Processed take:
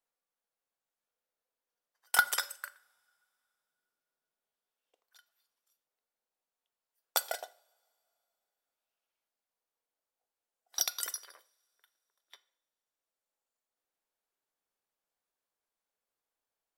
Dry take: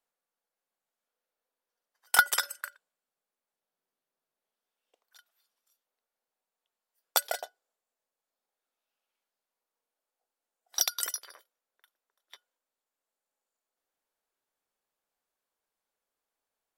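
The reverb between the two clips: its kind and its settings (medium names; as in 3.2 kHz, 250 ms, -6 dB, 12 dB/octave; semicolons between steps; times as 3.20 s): two-slope reverb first 0.52 s, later 3.1 s, from -26 dB, DRR 15 dB; trim -4 dB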